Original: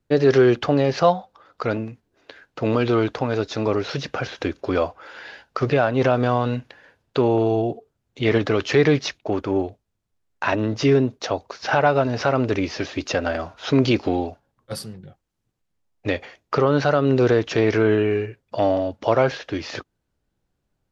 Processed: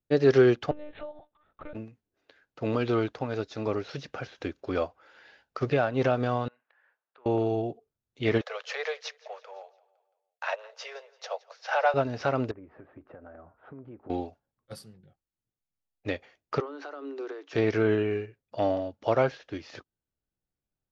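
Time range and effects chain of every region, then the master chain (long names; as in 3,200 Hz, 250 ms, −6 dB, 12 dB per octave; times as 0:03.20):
0:00.71–0:01.75: dynamic equaliser 580 Hz, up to +7 dB, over −29 dBFS, Q 2.1 + downward compressor 12 to 1, threshold −24 dBFS + one-pitch LPC vocoder at 8 kHz 300 Hz
0:06.48–0:07.26: parametric band 1,300 Hz +6 dB 1.2 octaves + downward compressor 2 to 1, threshold −45 dBFS + band-pass filter 750–2,200 Hz
0:08.41–0:11.94: Butterworth high-pass 470 Hz 96 dB per octave + repeating echo 170 ms, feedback 50%, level −18 dB
0:12.51–0:14.10: low-pass filter 1,500 Hz 24 dB per octave + downward compressor 4 to 1, threshold −31 dBFS
0:16.60–0:17.53: downward compressor 12 to 1, threshold −18 dBFS + Chebyshev high-pass with heavy ripple 270 Hz, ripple 6 dB
whole clip: notch filter 1,000 Hz, Q 21; expander for the loud parts 1.5 to 1, over −36 dBFS; level −3.5 dB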